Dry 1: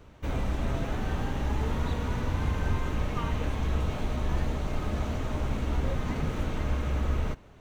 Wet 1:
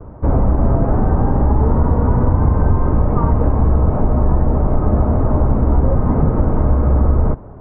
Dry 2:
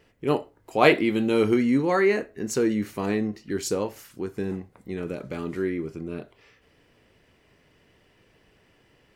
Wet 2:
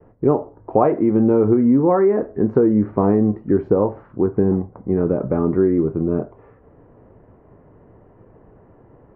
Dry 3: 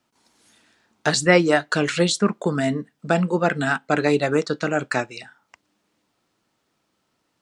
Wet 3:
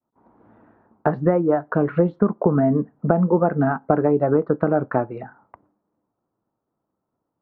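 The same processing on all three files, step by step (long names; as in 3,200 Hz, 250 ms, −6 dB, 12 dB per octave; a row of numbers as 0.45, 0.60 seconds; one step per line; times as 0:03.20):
downward compressor 12 to 1, threshold −25 dBFS
downward expander −60 dBFS
low-pass filter 1,100 Hz 24 dB per octave
parametric band 110 Hz +3.5 dB 0.21 octaves
normalise the peak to −2 dBFS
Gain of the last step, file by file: +17.0, +14.0, +12.0 decibels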